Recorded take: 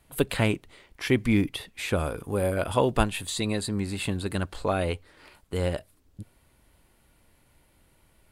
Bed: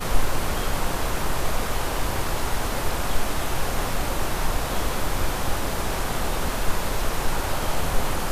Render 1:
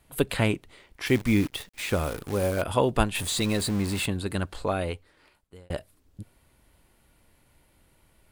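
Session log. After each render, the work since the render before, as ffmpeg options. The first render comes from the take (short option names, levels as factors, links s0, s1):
-filter_complex "[0:a]asettb=1/sr,asplit=3[s0][s1][s2];[s0]atrim=end=1.064[s3];[s1]atrim=start=1.06:end=2.62,asetpts=PTS-STARTPTS,afade=t=in:d=0.004:c=qsin,afade=t=out:st=1.556:d=0.004:c=qsin,acrusher=bits=7:dc=4:mix=0:aa=0.000001[s4];[s2]atrim=start=2.616[s5];[s3][s4]acrossfade=d=0.004:c1=hsin:c2=qsin[s6];[s6][s5]acrossfade=d=0.004:c1=qsin:c2=hsin,asettb=1/sr,asplit=3[s7][s8][s9];[s7]atrim=end=3.154[s10];[s8]atrim=start=3.15:end=4.06,asetpts=PTS-STARTPTS,afade=t=in:d=0.004:c=qsin,afade=t=out:st=0.906:d=0.004:c=qsin,aeval=exprs='val(0)+0.5*0.0299*sgn(val(0))':c=same[s11];[s9]atrim=start=4.056[s12];[s10][s11]acrossfade=d=0.004:c1=hsin:c2=qsin[s13];[s13][s12]acrossfade=d=0.004:c1=qsin:c2=hsin,asplit=2[s14][s15];[s14]atrim=end=5.7,asetpts=PTS-STARTPTS,afade=t=out:st=4.57:d=1.13[s16];[s15]atrim=start=5.7,asetpts=PTS-STARTPTS,afade=t=in:d=0.004:c=hsin[s17];[s16][s17]concat=n=2:v=0:a=1"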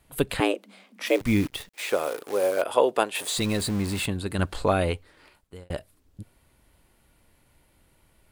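-filter_complex "[0:a]asettb=1/sr,asplit=3[s0][s1][s2];[s0]atrim=end=0.404[s3];[s1]atrim=start=0.4:end=1.21,asetpts=PTS-STARTPTS,afade=t=in:d=0.004:c=qsin,afade=t=out:st=0.806:d=0.004:c=qsin,afreqshift=190[s4];[s2]atrim=start=1.206[s5];[s3][s4]acrossfade=d=0.004:c1=hsin:c2=qsin[s6];[s6][s5]acrossfade=d=0.004:c1=qsin:c2=hsin,asettb=1/sr,asplit=3[s7][s8][s9];[s7]atrim=end=1.744[s10];[s8]atrim=start=1.74:end=3.38,asetpts=PTS-STARTPTS,afade=t=in:d=0.004:c=qsin,afade=t=out:st=1.636:d=0.004:c=qsin,highpass=f=460:t=q:w=1.6[s11];[s9]atrim=start=3.376[s12];[s10][s11]acrossfade=d=0.004:c1=hsin:c2=qsin[s13];[s13][s12]acrossfade=d=0.004:c1=qsin:c2=hsin,asplit=3[s14][s15][s16];[s14]atrim=end=4.392[s17];[s15]atrim=start=4.388:end=5.642,asetpts=PTS-STARTPTS,volume=1.78[s18];[s16]atrim=start=5.638[s19];[s17][s18]acrossfade=d=0.004:c1=hsin:c2=hsin[s20];[s20][s19]acrossfade=d=0.004:c1=hsin:c2=hsin"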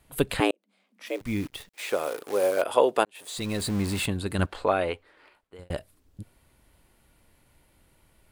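-filter_complex "[0:a]asettb=1/sr,asplit=3[s0][s1][s2];[s0]atrim=end=4.464[s3];[s1]atrim=start=4.46:end=5.59,asetpts=PTS-STARTPTS,afade=t=in:d=0.004:c=qsin,afade=t=out:st=1.126:d=0.004:c=qsin,bass=f=250:g=-13,treble=f=4000:g=-11[s4];[s2]atrim=start=5.586[s5];[s3][s4]acrossfade=d=0.004:c1=hsin:c2=qsin[s6];[s6][s5]acrossfade=d=0.004:c1=qsin:c2=hsin,asplit=3[s7][s8][s9];[s7]atrim=end=0.51,asetpts=PTS-STARTPTS,afade=t=out:st=0.506:d=0.004:c=hsin[s10];[s8]atrim=start=0.51:end=3.05,asetpts=PTS-STARTPTS,afade=t=in:d=1.86,afade=t=out:st=2.536:d=0.004:c=hsin[s11];[s9]atrim=start=3.05,asetpts=PTS-STARTPTS,afade=t=in:d=0.74[s12];[s10][s11][s12]concat=n=3:v=0:a=1"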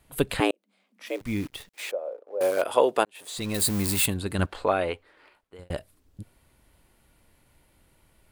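-filter_complex "[0:a]asettb=1/sr,asplit=3[s0][s1][s2];[s0]atrim=end=1.914[s3];[s1]atrim=start=1.91:end=2.41,asetpts=PTS-STARTPTS,afade=t=in:d=0.004:c=qsin,afade=t=out:st=0.496:d=0.004:c=qsin,bandpass=f=570:t=q:w=5.6[s4];[s2]atrim=start=2.406[s5];[s3][s4]acrossfade=d=0.004:c1=hsin:c2=qsin[s6];[s6][s5]acrossfade=d=0.004:c1=qsin:c2=hsin,asettb=1/sr,asplit=3[s7][s8][s9];[s7]atrim=end=3.544[s10];[s8]atrim=start=3.54:end=4.14,asetpts=PTS-STARTPTS,afade=t=in:d=0.004:c=qsin,afade=t=out:st=0.596:d=0.004:c=qsin,aemphasis=mode=production:type=50fm[s11];[s9]atrim=start=4.136[s12];[s10][s11]acrossfade=d=0.004:c1=hsin:c2=qsin[s13];[s13][s12]acrossfade=d=0.004:c1=qsin:c2=hsin"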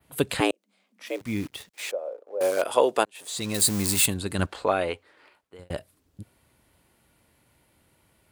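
-af "adynamicequalizer=threshold=0.00562:dfrequency=6700:dqfactor=0.91:tfrequency=6700:tqfactor=0.91:attack=5:release=100:ratio=0.375:range=3:mode=boostabove:tftype=bell,highpass=77"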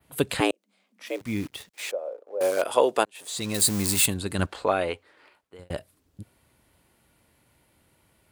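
-af anull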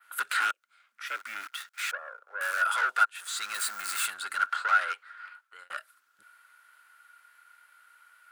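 -af "aeval=exprs='(tanh(25.1*val(0)+0.2)-tanh(0.2))/25.1':c=same,highpass=f=1400:t=q:w=14"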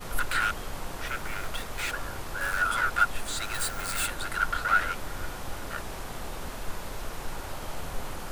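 -filter_complex "[1:a]volume=0.266[s0];[0:a][s0]amix=inputs=2:normalize=0"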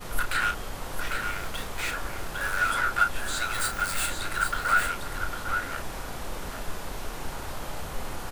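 -filter_complex "[0:a]asplit=2[s0][s1];[s1]adelay=33,volume=0.398[s2];[s0][s2]amix=inputs=2:normalize=0,asplit=2[s3][s4];[s4]aecho=0:1:804:0.447[s5];[s3][s5]amix=inputs=2:normalize=0"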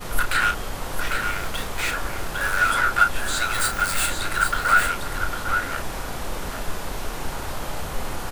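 -af "volume=1.88"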